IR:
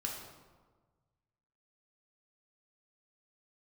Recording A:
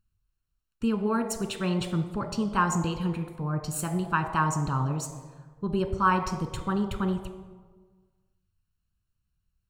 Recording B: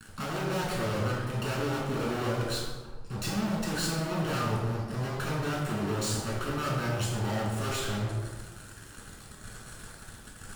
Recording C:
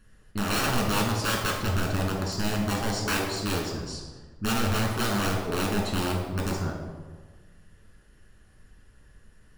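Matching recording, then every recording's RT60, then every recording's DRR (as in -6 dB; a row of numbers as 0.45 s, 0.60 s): C; 1.4 s, 1.4 s, 1.4 s; 7.5 dB, -5.0 dB, -1.0 dB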